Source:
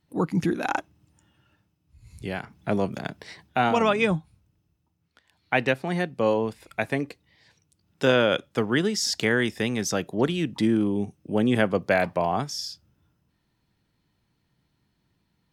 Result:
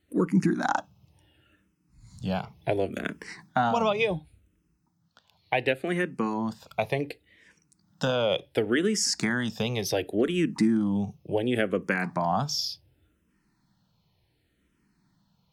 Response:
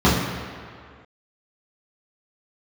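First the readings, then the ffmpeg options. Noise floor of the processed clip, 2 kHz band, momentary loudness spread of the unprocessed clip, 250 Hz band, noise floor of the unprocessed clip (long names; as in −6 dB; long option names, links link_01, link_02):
−72 dBFS, −3.5 dB, 11 LU, −1.5 dB, −73 dBFS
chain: -filter_complex "[0:a]acompressor=threshold=-23dB:ratio=6,asplit=2[link_01][link_02];[1:a]atrim=start_sample=2205,atrim=end_sample=3087[link_03];[link_02][link_03]afir=irnorm=-1:irlink=0,volume=-43.5dB[link_04];[link_01][link_04]amix=inputs=2:normalize=0,asplit=2[link_05][link_06];[link_06]afreqshift=-0.69[link_07];[link_05][link_07]amix=inputs=2:normalize=1,volume=4.5dB"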